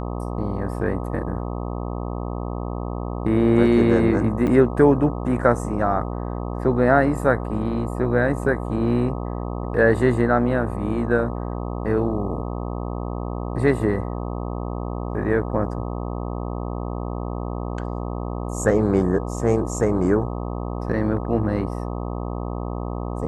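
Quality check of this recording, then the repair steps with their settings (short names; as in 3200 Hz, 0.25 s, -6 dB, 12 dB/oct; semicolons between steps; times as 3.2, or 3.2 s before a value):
buzz 60 Hz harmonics 21 -28 dBFS
4.47 gap 4 ms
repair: de-hum 60 Hz, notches 21; interpolate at 4.47, 4 ms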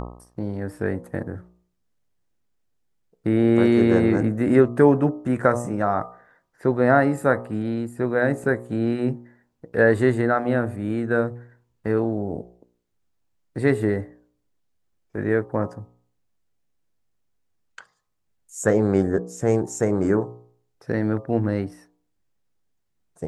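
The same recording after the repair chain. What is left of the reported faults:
none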